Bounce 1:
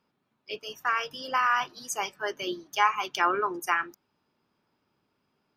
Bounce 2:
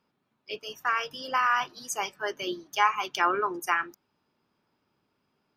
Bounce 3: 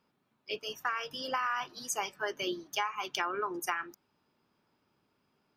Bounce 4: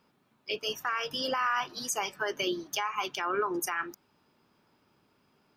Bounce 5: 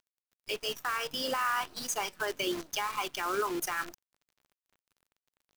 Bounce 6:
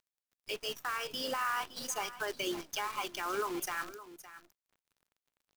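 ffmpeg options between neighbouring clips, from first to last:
-af anull
-af "acompressor=threshold=-29dB:ratio=10"
-af "alimiter=level_in=2.5dB:limit=-24dB:level=0:latency=1:release=112,volume=-2.5dB,volume=6.5dB"
-af "acrusher=bits=7:dc=4:mix=0:aa=0.000001,volume=-1.5dB"
-af "aecho=1:1:564:0.178,volume=-3.5dB"

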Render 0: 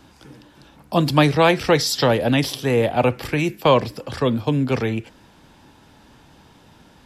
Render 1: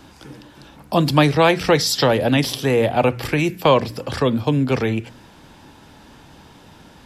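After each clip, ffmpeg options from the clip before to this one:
-filter_complex "[0:a]bandreject=f=59.81:t=h:w=4,bandreject=f=119.62:t=h:w=4,bandreject=f=179.43:t=h:w=4,bandreject=f=239.24:t=h:w=4,asplit=2[a][b];[b]acompressor=threshold=-25dB:ratio=6,volume=-0.5dB[c];[a][c]amix=inputs=2:normalize=0,volume=-1dB"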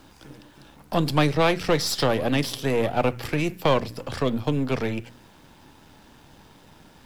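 -af "aeval=exprs='if(lt(val(0),0),0.447*val(0),val(0))':c=same,acrusher=bits=9:mix=0:aa=0.000001,volume=-3.5dB"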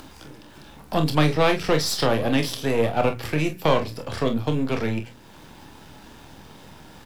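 -filter_complex "[0:a]acompressor=mode=upward:threshold=-38dB:ratio=2.5,asplit=2[a][b];[b]aecho=0:1:26|45:0.398|0.299[c];[a][c]amix=inputs=2:normalize=0"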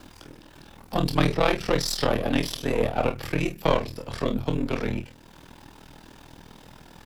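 -af "aeval=exprs='val(0)*sin(2*PI*20*n/s)':c=same"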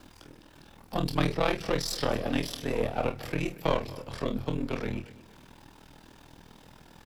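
-af "aecho=1:1:232|464|696:0.112|0.0415|0.0154,volume=-5dB"

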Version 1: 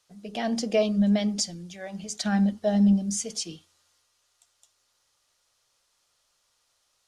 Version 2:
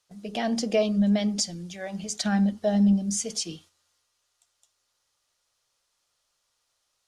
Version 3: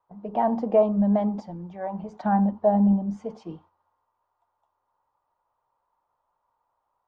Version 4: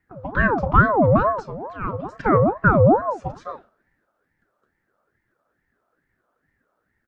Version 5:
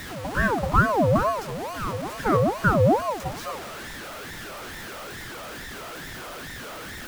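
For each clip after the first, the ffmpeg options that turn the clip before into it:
-filter_complex "[0:a]agate=range=-7dB:threshold=-55dB:ratio=16:detection=peak,asplit=2[a][b];[b]acompressor=threshold=-30dB:ratio=6,volume=-2.5dB[c];[a][c]amix=inputs=2:normalize=0,volume=-2dB"
-af "lowpass=f=940:t=q:w=6.7"
-filter_complex "[0:a]asplit=2[a][b];[b]adelay=34,volume=-13dB[c];[a][c]amix=inputs=2:normalize=0,aeval=exprs='val(0)*sin(2*PI*600*n/s+600*0.5/2.3*sin(2*PI*2.3*n/s))':c=same,volume=7dB"
-af "aeval=exprs='val(0)+0.5*0.0501*sgn(val(0))':c=same,volume=-5dB"

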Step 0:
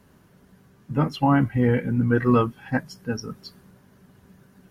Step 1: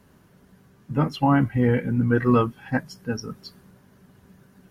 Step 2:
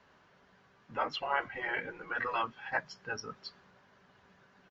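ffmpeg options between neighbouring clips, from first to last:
-af anull
-filter_complex "[0:a]aresample=16000,aresample=44100,afftfilt=real='re*lt(hypot(re,im),0.316)':imag='im*lt(hypot(re,im),0.316)':win_size=1024:overlap=0.75,acrossover=split=530 5100:gain=0.158 1 0.112[a][b][c];[a][b][c]amix=inputs=3:normalize=0"

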